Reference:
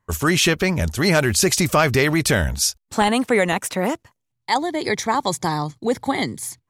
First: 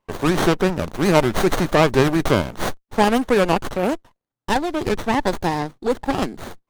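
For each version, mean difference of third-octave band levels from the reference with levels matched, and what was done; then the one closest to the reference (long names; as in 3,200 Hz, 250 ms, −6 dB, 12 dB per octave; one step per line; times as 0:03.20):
6.5 dB: high-pass filter 280 Hz 12 dB per octave
windowed peak hold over 17 samples
level +2 dB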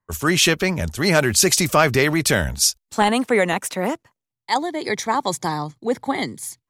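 2.0 dB: parametric band 69 Hz −6 dB 1.5 octaves
multiband upward and downward expander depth 40%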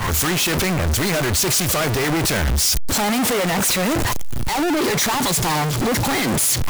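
10.5 dB: sign of each sample alone
multiband upward and downward expander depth 100%
level +2 dB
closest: second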